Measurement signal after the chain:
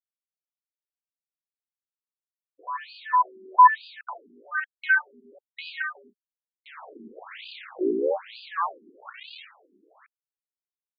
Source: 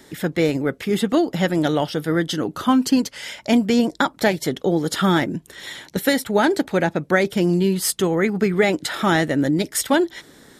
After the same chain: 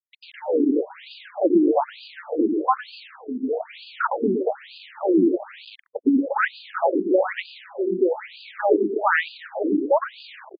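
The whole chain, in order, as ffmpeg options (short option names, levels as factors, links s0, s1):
-af "highshelf=f=6400:g=2,aecho=1:1:110|231|364.1|510.5|671.6:0.631|0.398|0.251|0.158|0.1,afwtdn=0.1,acrusher=bits=5:mix=0:aa=0.000001,afftfilt=real='re*between(b*sr/1024,290*pow(3500/290,0.5+0.5*sin(2*PI*1.1*pts/sr))/1.41,290*pow(3500/290,0.5+0.5*sin(2*PI*1.1*pts/sr))*1.41)':imag='im*between(b*sr/1024,290*pow(3500/290,0.5+0.5*sin(2*PI*1.1*pts/sr))/1.41,290*pow(3500/290,0.5+0.5*sin(2*PI*1.1*pts/sr))*1.41)':win_size=1024:overlap=0.75,volume=1.5"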